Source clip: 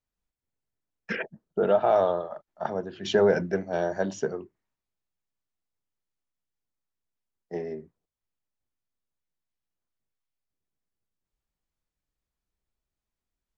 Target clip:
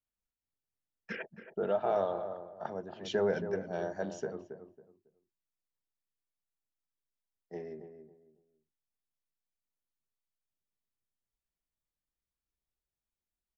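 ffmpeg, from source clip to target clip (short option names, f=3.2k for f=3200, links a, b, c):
-filter_complex "[0:a]asplit=2[a][b];[b]adelay=275,lowpass=f=1.1k:p=1,volume=-8.5dB,asplit=2[c][d];[d]adelay=275,lowpass=f=1.1k:p=1,volume=0.27,asplit=2[e][f];[f]adelay=275,lowpass=f=1.1k:p=1,volume=0.27[g];[a][c][e][g]amix=inputs=4:normalize=0,volume=-9dB"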